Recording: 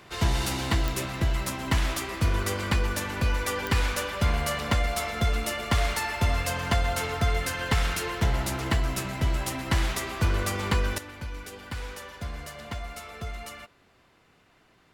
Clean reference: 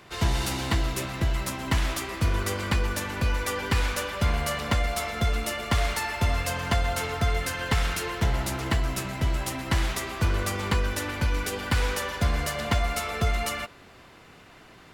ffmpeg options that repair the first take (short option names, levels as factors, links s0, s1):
-af "adeclick=t=4,asetnsamples=n=441:p=0,asendcmd='10.98 volume volume 11dB',volume=1"